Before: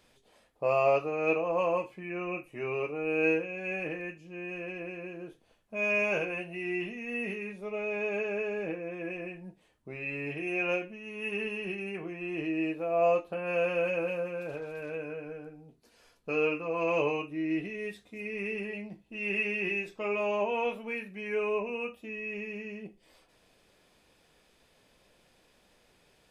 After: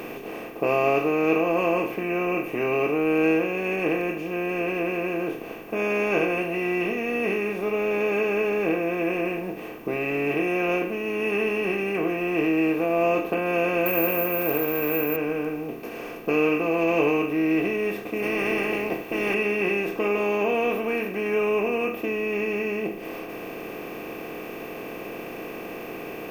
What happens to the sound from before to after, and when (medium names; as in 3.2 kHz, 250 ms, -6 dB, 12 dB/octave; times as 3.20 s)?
13.86–15.16 s: careless resampling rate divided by 3×, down filtered, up zero stuff
18.22–19.33 s: spectral peaks clipped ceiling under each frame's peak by 23 dB
whole clip: spectral levelling over time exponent 0.4; peaking EQ 210 Hz +11.5 dB 1.3 oct; comb 2.6 ms, depth 45%; trim -1.5 dB